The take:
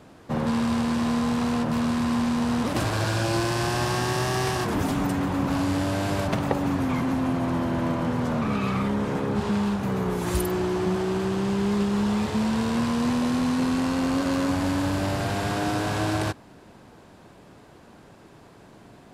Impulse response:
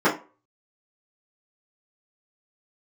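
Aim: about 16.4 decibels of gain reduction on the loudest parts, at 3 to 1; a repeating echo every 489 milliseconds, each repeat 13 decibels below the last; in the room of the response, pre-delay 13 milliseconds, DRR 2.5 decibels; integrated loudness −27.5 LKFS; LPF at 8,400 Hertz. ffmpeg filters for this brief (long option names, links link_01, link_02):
-filter_complex "[0:a]lowpass=8400,acompressor=threshold=-43dB:ratio=3,aecho=1:1:489|978|1467:0.224|0.0493|0.0108,asplit=2[link_01][link_02];[1:a]atrim=start_sample=2205,adelay=13[link_03];[link_02][link_03]afir=irnorm=-1:irlink=0,volume=-22dB[link_04];[link_01][link_04]amix=inputs=2:normalize=0,volume=10.5dB"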